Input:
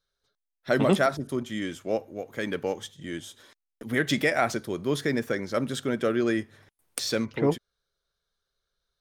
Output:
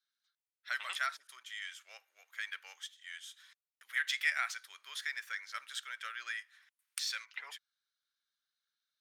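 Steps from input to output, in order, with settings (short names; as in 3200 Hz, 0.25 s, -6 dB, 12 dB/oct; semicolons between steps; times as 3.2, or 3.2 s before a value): HPF 1500 Hz 24 dB/oct; high shelf 5000 Hz -6.5 dB; gain -2.5 dB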